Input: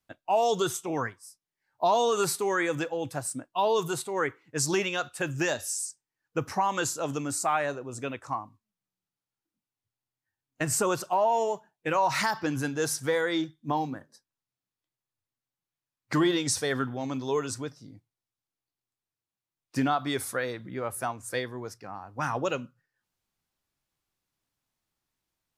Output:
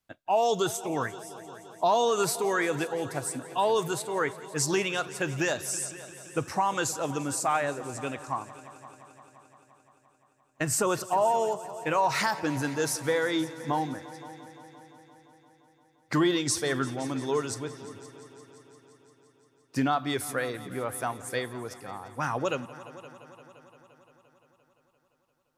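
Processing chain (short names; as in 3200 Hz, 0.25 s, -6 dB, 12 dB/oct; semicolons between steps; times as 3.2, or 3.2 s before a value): multi-head echo 0.173 s, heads all three, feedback 60%, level -21 dB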